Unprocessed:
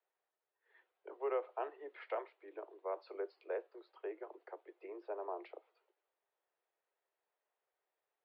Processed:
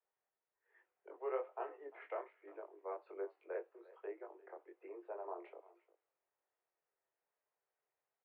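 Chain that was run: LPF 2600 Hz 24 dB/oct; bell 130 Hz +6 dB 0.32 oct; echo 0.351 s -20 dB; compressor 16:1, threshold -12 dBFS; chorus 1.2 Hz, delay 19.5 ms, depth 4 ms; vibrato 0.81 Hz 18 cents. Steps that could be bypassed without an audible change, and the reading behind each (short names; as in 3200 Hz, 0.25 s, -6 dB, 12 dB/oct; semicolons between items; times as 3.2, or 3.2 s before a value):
bell 130 Hz: input band starts at 290 Hz; compressor, threshold -12 dBFS: input peak -24.5 dBFS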